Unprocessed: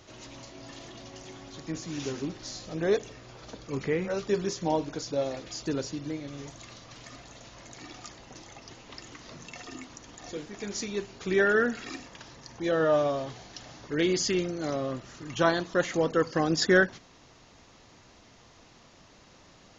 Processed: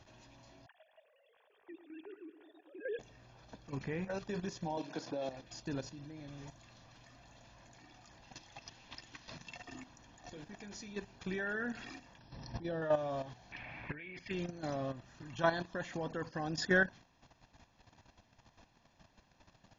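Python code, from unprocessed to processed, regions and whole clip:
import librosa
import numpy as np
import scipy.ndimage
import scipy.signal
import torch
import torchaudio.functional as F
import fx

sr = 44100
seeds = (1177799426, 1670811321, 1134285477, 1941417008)

y = fx.chain(x, sr, fx.sine_speech(),
    fx.echo_filtered(ms=104, feedback_pct=74, hz=2400.0, wet_db=-11), at=(0.66, 2.99))
y = fx.chain(y, sr, fx.bandpass_edges(low_hz=280.0, high_hz=6000.0),
    fx.low_shelf(hz=490.0, db=5.5),
    fx.band_squash(depth_pct=100), at=(4.77, 5.29))
y = fx.chain(y, sr, fx.lowpass(hz=5200.0, slope=12),
    fx.high_shelf(hz=2400.0, db=12.0), at=(8.22, 9.56))
y = fx.chain(y, sr, fx.brickwall_lowpass(high_hz=5800.0),
    fx.peak_eq(hz=1800.0, db=-9.5, octaves=2.9),
    fx.pre_swell(db_per_s=45.0), at=(12.18, 12.82))
y = fx.chain(y, sr, fx.over_compress(threshold_db=-37.0, ratio=-1.0),
    fx.lowpass_res(hz=2300.0, q=11.0), at=(13.52, 14.31))
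y = fx.high_shelf(y, sr, hz=6100.0, db=-10.5)
y = y + 0.48 * np.pad(y, (int(1.2 * sr / 1000.0), 0))[:len(y)]
y = fx.level_steps(y, sr, step_db=11)
y = F.gain(torch.from_numpy(y), -4.5).numpy()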